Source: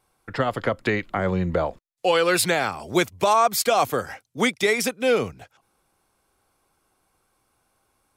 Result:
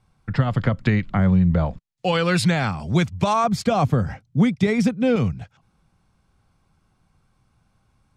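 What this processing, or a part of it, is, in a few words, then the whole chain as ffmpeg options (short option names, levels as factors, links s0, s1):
jukebox: -filter_complex "[0:a]asettb=1/sr,asplit=3[s0][s1][s2];[s0]atrim=end=3.444[s3];[s1]atrim=start=3.44:end=5.16,asetpts=PTS-STARTPTS,afade=t=in:d=0.004:c=qsin,afade=t=out:st=1.716:d=0.004:c=qsin,tiltshelf=f=930:g=5.5[s4];[s2]atrim=start=5.156[s5];[s3][s4]acrossfade=d=0.004:c1=hsin:c2=qsin[s6];[s6][s5]acrossfade=d=0.004:c1=qsin:c2=hsin,lowpass=6400,lowshelf=f=250:t=q:w=1.5:g=12.5,acompressor=threshold=0.2:ratio=4"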